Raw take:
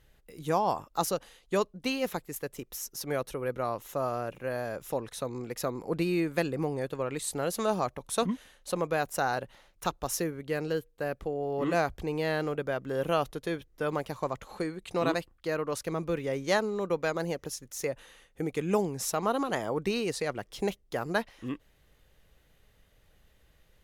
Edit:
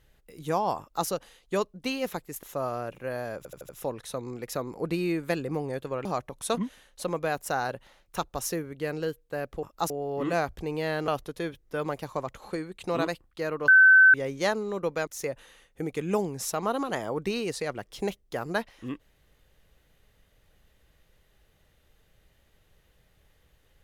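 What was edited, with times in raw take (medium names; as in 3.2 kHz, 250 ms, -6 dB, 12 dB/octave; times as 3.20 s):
0.80–1.07 s: copy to 11.31 s
2.43–3.83 s: delete
4.77 s: stutter 0.08 s, 5 plays
7.13–7.73 s: delete
12.49–13.15 s: delete
15.75–16.21 s: bleep 1.53 kHz -12 dBFS
17.14–17.67 s: delete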